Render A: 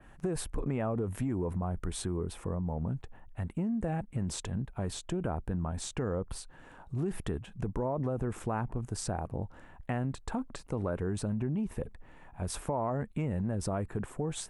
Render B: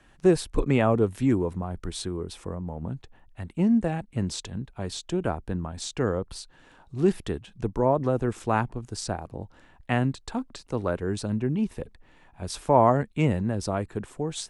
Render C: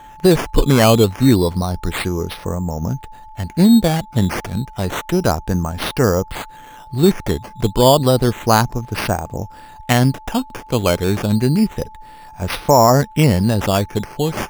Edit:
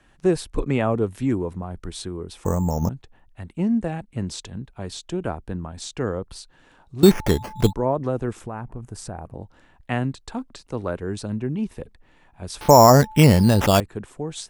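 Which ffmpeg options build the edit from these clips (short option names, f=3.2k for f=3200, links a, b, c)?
-filter_complex "[2:a]asplit=3[a][b][c];[1:a]asplit=5[d][e][f][g][h];[d]atrim=end=2.452[i];[a]atrim=start=2.448:end=2.892[j];[e]atrim=start=2.888:end=7.032[k];[b]atrim=start=7.028:end=7.732[l];[f]atrim=start=7.728:end=8.412[m];[0:a]atrim=start=8.408:end=9.342[n];[g]atrim=start=9.338:end=12.612[o];[c]atrim=start=12.608:end=13.802[p];[h]atrim=start=13.798[q];[i][j]acrossfade=d=0.004:c1=hsin:c2=hsin[r];[r][k]acrossfade=d=0.004:c1=hsin:c2=hsin[s];[s][l]acrossfade=d=0.004:c1=hsin:c2=hsin[t];[t][m]acrossfade=d=0.004:c1=hsin:c2=hsin[u];[u][n]acrossfade=d=0.004:c1=hsin:c2=hsin[v];[v][o]acrossfade=d=0.004:c1=hsin:c2=hsin[w];[w][p]acrossfade=d=0.004:c1=hsin:c2=hsin[x];[x][q]acrossfade=d=0.004:c1=hsin:c2=hsin"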